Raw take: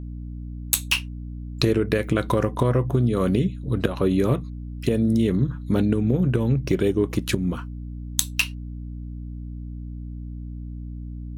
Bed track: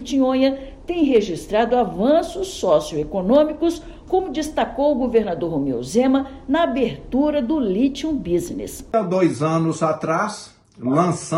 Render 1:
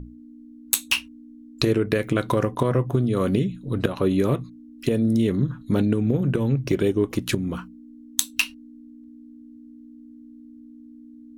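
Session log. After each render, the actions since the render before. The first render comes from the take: notches 60/120/180 Hz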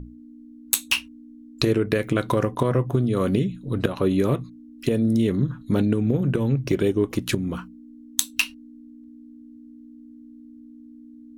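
nothing audible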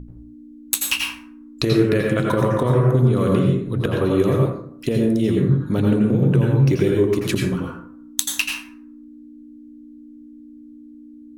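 plate-style reverb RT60 0.65 s, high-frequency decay 0.5×, pre-delay 75 ms, DRR -1 dB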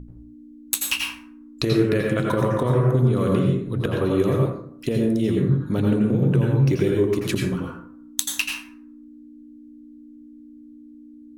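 gain -2.5 dB

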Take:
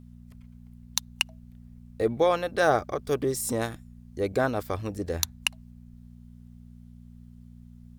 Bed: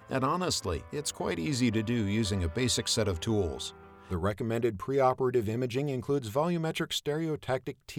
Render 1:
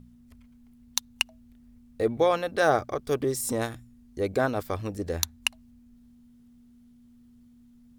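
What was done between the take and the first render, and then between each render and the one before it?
de-hum 60 Hz, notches 3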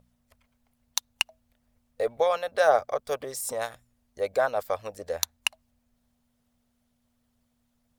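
resonant low shelf 430 Hz -9 dB, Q 3; harmonic-percussive split harmonic -7 dB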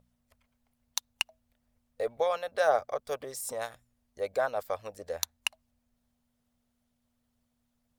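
gain -4.5 dB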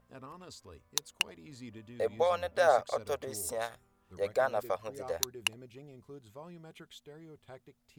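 add bed -20 dB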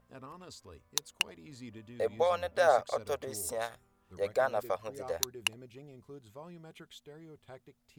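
nothing audible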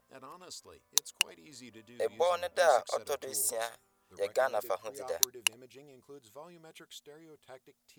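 tone controls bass -11 dB, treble +7 dB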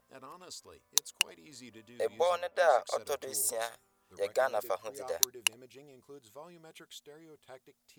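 2.37–2.82 tone controls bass -9 dB, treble -9 dB

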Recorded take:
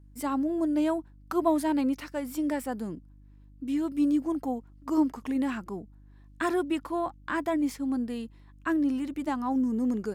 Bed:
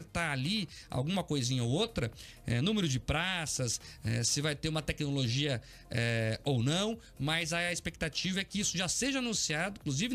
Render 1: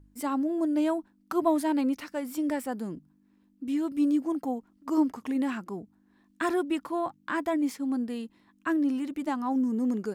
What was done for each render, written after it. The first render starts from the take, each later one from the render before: de-hum 50 Hz, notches 3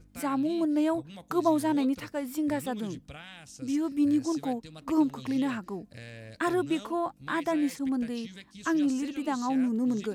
add bed -13.5 dB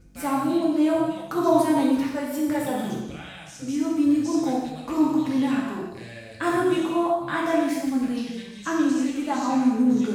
non-linear reverb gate 0.39 s falling, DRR -4.5 dB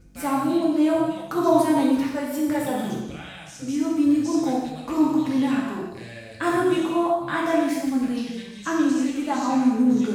gain +1 dB

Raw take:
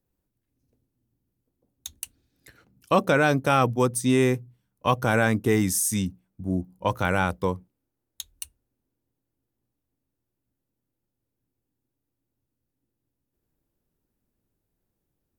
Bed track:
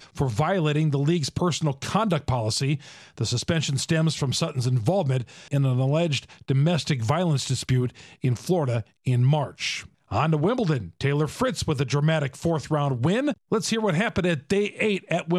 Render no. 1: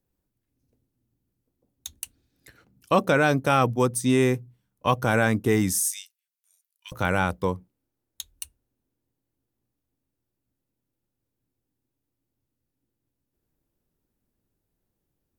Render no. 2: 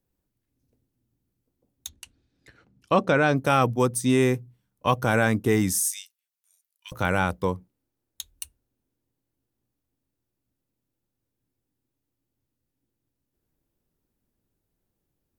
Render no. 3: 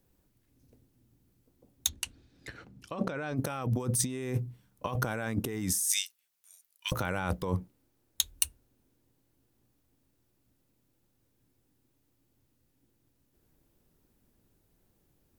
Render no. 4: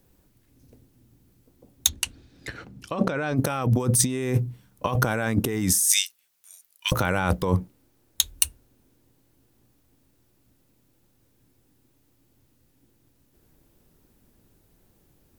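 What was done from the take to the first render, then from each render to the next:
5.89–6.92 Bessel high-pass 3000 Hz, order 6
1.89–3.36 air absorption 78 m
negative-ratio compressor -32 dBFS, ratio -1
gain +8.5 dB; limiter -2 dBFS, peak gain reduction 2.5 dB

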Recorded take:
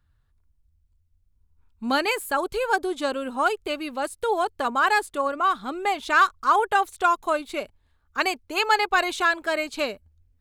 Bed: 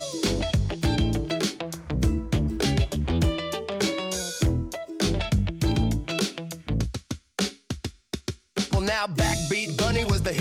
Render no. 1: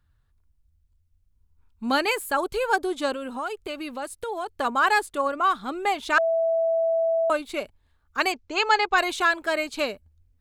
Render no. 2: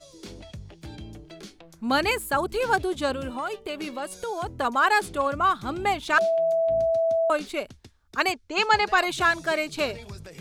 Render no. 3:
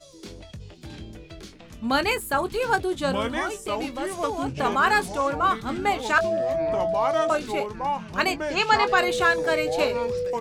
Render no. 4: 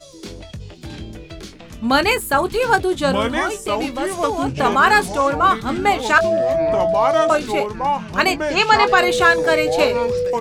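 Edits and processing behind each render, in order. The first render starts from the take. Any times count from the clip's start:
3.13–4.54 compressor 3:1, threshold -29 dBFS; 6.18–7.3 bleep 658 Hz -19.5 dBFS; 8.32–8.98 steep low-pass 7400 Hz 48 dB/oct
add bed -17 dB
echoes that change speed 0.59 s, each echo -5 st, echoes 3, each echo -6 dB; doubler 22 ms -12 dB
gain +7 dB; limiter -2 dBFS, peak gain reduction 1.5 dB

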